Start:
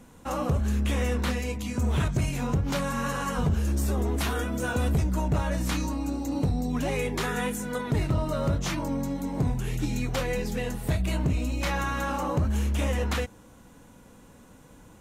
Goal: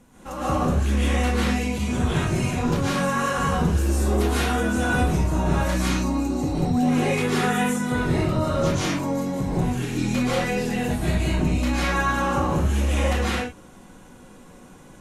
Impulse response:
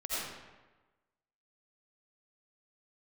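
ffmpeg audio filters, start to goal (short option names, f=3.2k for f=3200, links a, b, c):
-filter_complex "[1:a]atrim=start_sample=2205,afade=t=out:st=0.2:d=0.01,atrim=end_sample=9261,asetrate=25137,aresample=44100[a];[0:a][a]afir=irnorm=-1:irlink=0,volume=-1.5dB"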